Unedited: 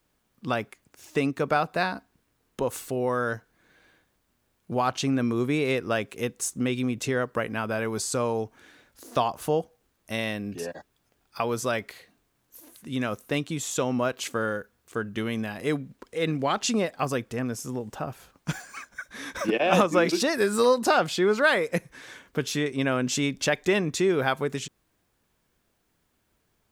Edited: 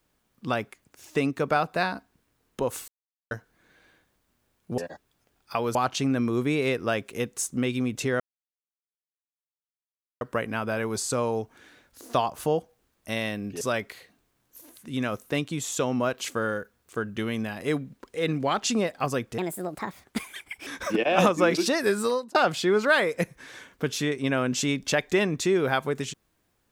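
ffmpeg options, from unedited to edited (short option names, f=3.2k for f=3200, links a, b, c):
-filter_complex "[0:a]asplit=10[a][b][c][d][e][f][g][h][i][j];[a]atrim=end=2.88,asetpts=PTS-STARTPTS,afade=t=out:st=2.876:d=0.004:c=hsin[k];[b]atrim=start=2.88:end=3.31,asetpts=PTS-STARTPTS,volume=0[l];[c]atrim=start=3.31:end=4.782,asetpts=PTS-STARTPTS,afade=t=in:d=0.004:c=hsin[m];[d]atrim=start=10.628:end=11.602[n];[e]atrim=start=4.778:end=7.23,asetpts=PTS-STARTPTS,afade=t=out:st=2.448:d=0.004:c=hsin,apad=pad_dur=2.01[o];[f]atrim=start=7.23:end=10.632,asetpts=PTS-STARTPTS,afade=t=in:d=0.004:c=hsin[p];[g]atrim=start=11.598:end=17.374[q];[h]atrim=start=17.37:end=19.21,asetpts=PTS-STARTPTS,asetrate=63063,aresample=44100,atrim=end_sample=56744,asetpts=PTS-STARTPTS[r];[i]atrim=start=19.206:end=20.89,asetpts=PTS-STARTPTS,afade=t=out:st=1.254:d=0.43[s];[j]atrim=start=20.89,asetpts=PTS-STARTPTS,afade=t=in:d=0.004:c=hsin[t];[k][l][m]concat=n=3:v=0:a=1[u];[u][n]acrossfade=d=0.004:c1=hsin:c2=hsin[v];[o][p]concat=n=2:v=0:a=1[w];[v][w]acrossfade=d=0.004:c1=hsin:c2=hsin[x];[x][q]acrossfade=d=0.004:c1=hsin:c2=hsin[y];[y][r]acrossfade=d=0.004:c1=hsin:c2=hsin[z];[s][t]concat=n=2:v=0:a=1[aa];[z][aa]acrossfade=d=0.004:c1=hsin:c2=hsin"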